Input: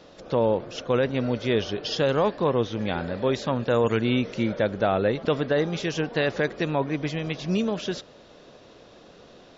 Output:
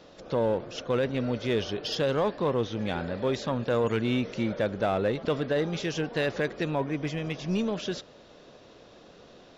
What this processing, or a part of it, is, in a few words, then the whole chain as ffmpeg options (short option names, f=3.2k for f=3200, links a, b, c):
parallel distortion: -filter_complex "[0:a]asplit=2[a][b];[b]asoftclip=type=hard:threshold=-24.5dB,volume=-5dB[c];[a][c]amix=inputs=2:normalize=0,asettb=1/sr,asplit=3[d][e][f];[d]atrim=end=6.754[g];[e]atrim=start=6.75:end=7.46,asetpts=PTS-STARTPTS,afade=t=in:d=0.004:c=qsin,afade=t=out:st=0.706:d=0.004:c=qsin,equalizer=f=4.1k:t=o:w=0.29:g=-6[h];[f]atrim=start=7.456[i];[g][h]acrossfade=d=0.004:c1=hsin:c2=qsin[j];[j][i]acrossfade=d=0.004:c1=qsin:c2=hsin,volume=-6dB"